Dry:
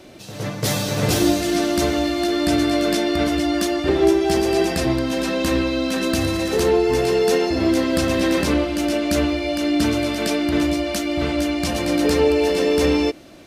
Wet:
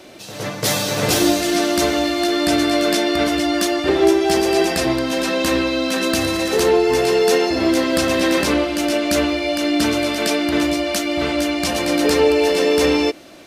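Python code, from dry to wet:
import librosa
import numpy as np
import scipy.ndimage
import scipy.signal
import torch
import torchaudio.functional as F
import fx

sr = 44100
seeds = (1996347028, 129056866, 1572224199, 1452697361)

y = fx.low_shelf(x, sr, hz=220.0, db=-11.0)
y = y * 10.0 ** (4.5 / 20.0)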